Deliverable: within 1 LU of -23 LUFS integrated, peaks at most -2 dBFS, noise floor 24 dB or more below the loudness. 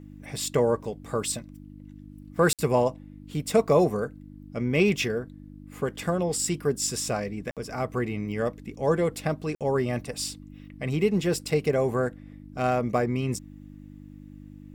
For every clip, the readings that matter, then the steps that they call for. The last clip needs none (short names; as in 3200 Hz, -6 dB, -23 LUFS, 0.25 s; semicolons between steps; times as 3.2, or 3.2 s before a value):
dropouts 3; longest dropout 57 ms; hum 50 Hz; harmonics up to 300 Hz; hum level -42 dBFS; loudness -27.0 LUFS; peak -9.5 dBFS; loudness target -23.0 LUFS
-> interpolate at 2.53/7.51/9.55, 57 ms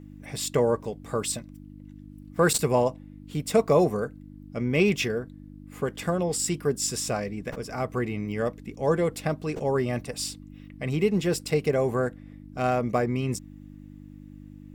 dropouts 0; hum 50 Hz; harmonics up to 300 Hz; hum level -42 dBFS
-> de-hum 50 Hz, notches 6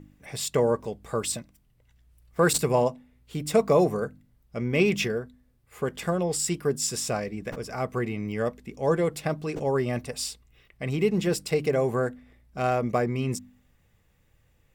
hum none; loudness -27.0 LUFS; peak -10.0 dBFS; loudness target -23.0 LUFS
-> gain +4 dB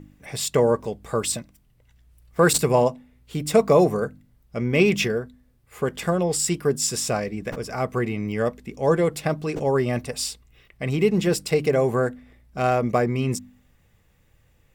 loudness -23.0 LUFS; peak -6.0 dBFS; noise floor -61 dBFS